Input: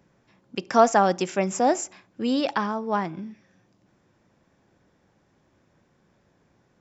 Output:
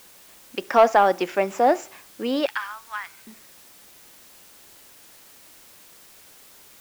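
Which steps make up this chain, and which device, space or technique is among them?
2.46–3.27 HPF 1400 Hz 24 dB/oct; tape answering machine (BPF 360–3200 Hz; soft clip -10 dBFS, distortion -16 dB; wow and flutter; white noise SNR 24 dB); gain +4.5 dB

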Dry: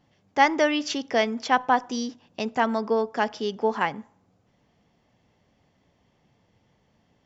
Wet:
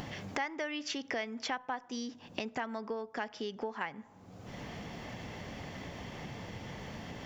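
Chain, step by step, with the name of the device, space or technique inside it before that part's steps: upward and downward compression (upward compressor, threshold -24 dBFS; compressor 6:1, threshold -35 dBFS, peak gain reduction 20.5 dB); dynamic EQ 2000 Hz, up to +6 dB, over -55 dBFS, Q 1.3; gain -1 dB

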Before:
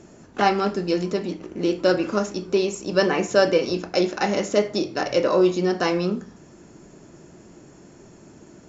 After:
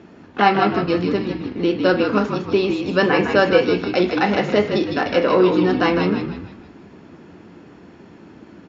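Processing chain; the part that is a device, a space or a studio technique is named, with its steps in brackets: frequency-shifting delay pedal into a guitar cabinet (frequency-shifting echo 0.156 s, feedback 42%, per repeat -55 Hz, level -6 dB; speaker cabinet 93–3900 Hz, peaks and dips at 130 Hz -9 dB, 370 Hz -3 dB, 600 Hz -6 dB); gain +5.5 dB

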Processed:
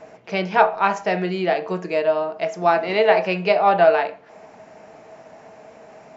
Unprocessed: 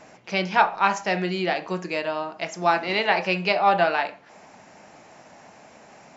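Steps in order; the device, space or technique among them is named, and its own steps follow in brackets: inside a helmet (high shelf 3400 Hz -9 dB; small resonant body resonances 450/640 Hz, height 12 dB, ringing for 0.1 s); gain +2 dB

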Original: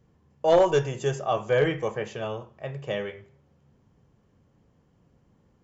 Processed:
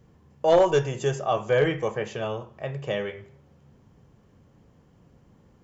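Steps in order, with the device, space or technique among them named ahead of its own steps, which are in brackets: parallel compression (in parallel at 0 dB: compressor, threshold -41 dBFS, peak gain reduction 24 dB)

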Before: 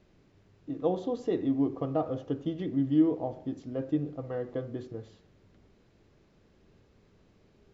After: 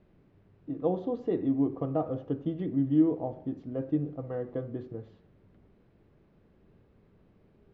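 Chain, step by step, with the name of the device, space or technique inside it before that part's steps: phone in a pocket (LPF 3500 Hz 12 dB/oct; bell 170 Hz +2.5 dB; high shelf 2100 Hz -8 dB)

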